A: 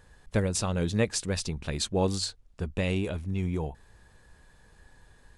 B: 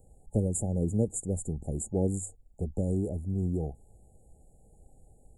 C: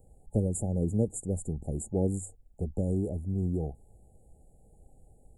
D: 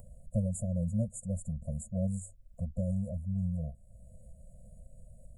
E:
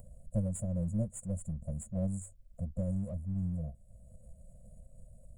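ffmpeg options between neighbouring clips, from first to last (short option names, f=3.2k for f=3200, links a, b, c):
-filter_complex "[0:a]afftfilt=real='re*(1-between(b*sr/4096,850,6800))':imag='im*(1-between(b*sr/4096,850,6800))':win_size=4096:overlap=0.75,acrossover=split=340|470|3900[a][b][c][d];[c]acompressor=threshold=-46dB:ratio=6[e];[a][b][e][d]amix=inputs=4:normalize=0"
-af "equalizer=f=4.8k:w=0.99:g=-8.5"
-filter_complex "[0:a]asplit=2[a][b];[b]acompressor=mode=upward:threshold=-32dB:ratio=2.5,volume=1dB[c];[a][c]amix=inputs=2:normalize=0,afftfilt=real='re*eq(mod(floor(b*sr/1024/240),2),0)':imag='im*eq(mod(floor(b*sr/1024/240),2),0)':win_size=1024:overlap=0.75,volume=-8.5dB"
-af "aeval=exprs='if(lt(val(0),0),0.708*val(0),val(0))':c=same"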